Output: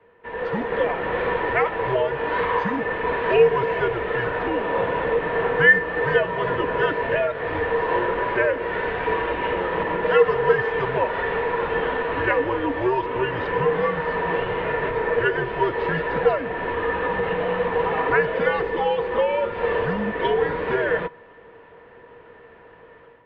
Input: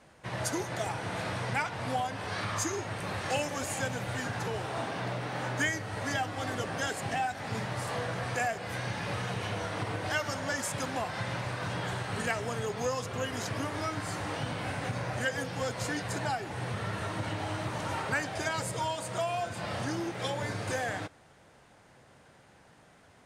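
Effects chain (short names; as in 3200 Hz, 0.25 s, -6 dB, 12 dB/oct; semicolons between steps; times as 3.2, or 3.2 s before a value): AGC gain up to 10 dB; small resonant body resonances 600/1100/1900 Hz, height 17 dB, ringing for 85 ms; mistuned SSB -130 Hz 200–3200 Hz; gain -2.5 dB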